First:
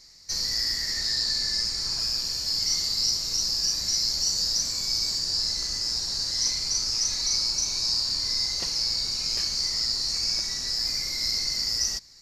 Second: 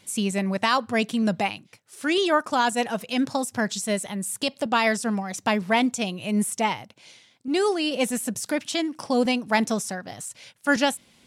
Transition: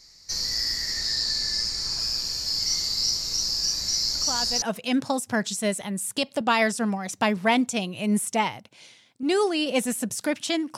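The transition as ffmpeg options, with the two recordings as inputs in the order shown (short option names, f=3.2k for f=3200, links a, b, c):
-filter_complex "[1:a]asplit=2[a][b];[0:a]apad=whole_dur=10.77,atrim=end=10.77,atrim=end=4.622[c];[b]atrim=start=2.868:end=9.02[d];[a]atrim=start=2.4:end=2.87,asetpts=PTS-STARTPTS,volume=-10.5dB,afade=t=in:d=0.004:c=hsin,afade=t=out:st=0.466:d=0.004:c=hsin,adelay=4150[e];[c][d]acrossfade=d=0.004:c1=hsin:c2=hsin[f];[f][e]amix=inputs=2:normalize=0"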